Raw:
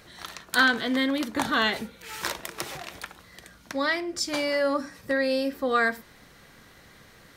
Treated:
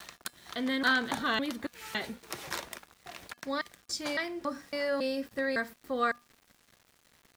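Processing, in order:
slices reordered back to front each 278 ms, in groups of 2
centre clipping without the shift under −46.5 dBFS
tuned comb filter 240 Hz, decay 0.3 s, harmonics odd, mix 40%
level −2 dB

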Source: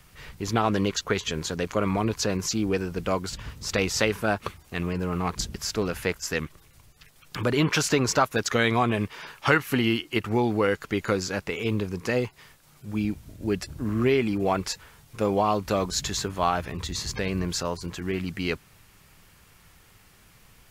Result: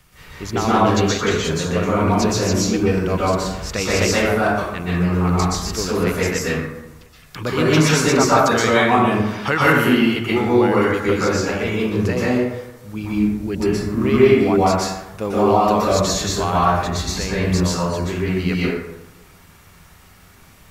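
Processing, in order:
dense smooth reverb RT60 1 s, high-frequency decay 0.45×, pre-delay 110 ms, DRR −7.5 dB

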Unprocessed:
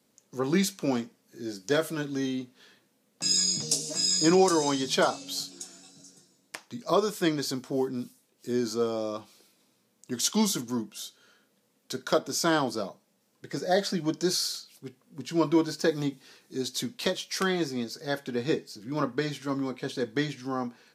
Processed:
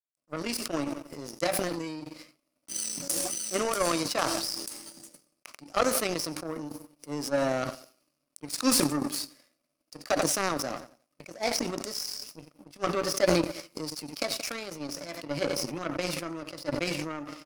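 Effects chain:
EQ curve with evenly spaced ripples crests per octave 0.97, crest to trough 11 dB
repeating echo 106 ms, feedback 54%, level −20 dB
change of speed 1.2×
power curve on the samples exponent 2
level that may fall only so fast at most 24 dB per second
level +1 dB

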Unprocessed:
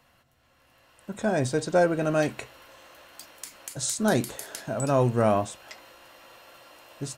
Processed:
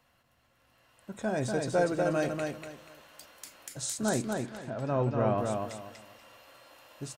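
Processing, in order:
0:04.09–0:05.38: high-frequency loss of the air 220 metres
on a send: repeating echo 241 ms, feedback 27%, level −4 dB
on the sum: level −6 dB

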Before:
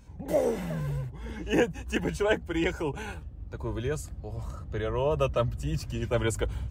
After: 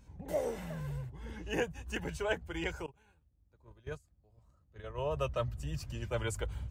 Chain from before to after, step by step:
dynamic equaliser 280 Hz, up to −7 dB, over −41 dBFS, Q 1.1
0:02.86–0:05.07: noise gate −30 dBFS, range −23 dB
level −6 dB

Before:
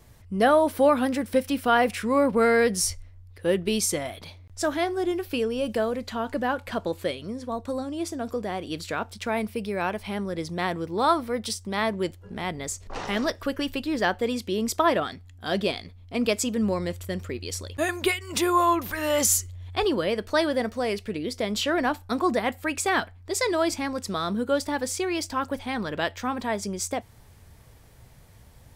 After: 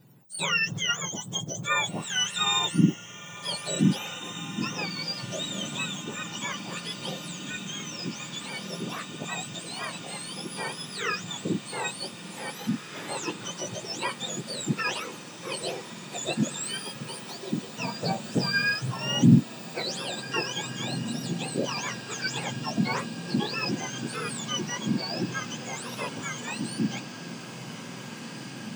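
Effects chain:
frequency axis turned over on the octave scale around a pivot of 1,300 Hz
feedback delay with all-pass diffusion 1,863 ms, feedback 79%, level −12 dB
level −3.5 dB

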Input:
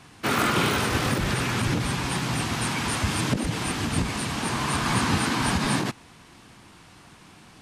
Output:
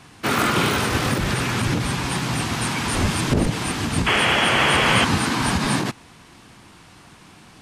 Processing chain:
0:02.93–0:03.49: wind on the microphone 280 Hz −28 dBFS
0:04.06–0:05.05: sound drawn into the spectrogram noise 310–3,400 Hz −22 dBFS
level +3 dB

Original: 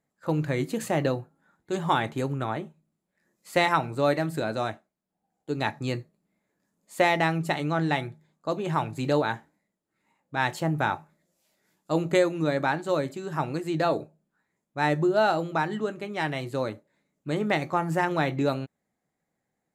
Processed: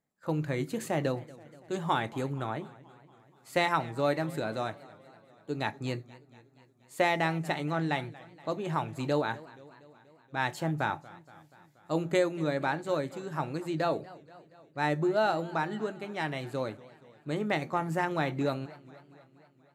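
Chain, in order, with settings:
feedback echo with a swinging delay time 238 ms, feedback 64%, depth 144 cents, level −20.5 dB
level −4.5 dB

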